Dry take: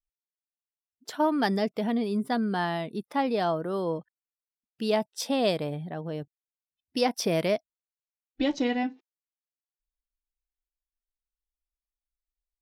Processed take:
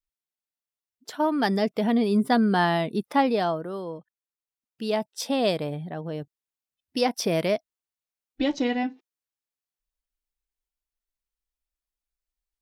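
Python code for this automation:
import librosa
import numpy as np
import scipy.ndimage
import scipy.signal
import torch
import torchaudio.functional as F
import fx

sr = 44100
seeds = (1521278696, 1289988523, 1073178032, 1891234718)

y = fx.gain(x, sr, db=fx.line((1.16, 0.0), (2.18, 6.5), (3.14, 6.5), (3.92, -6.0), (5.32, 1.5)))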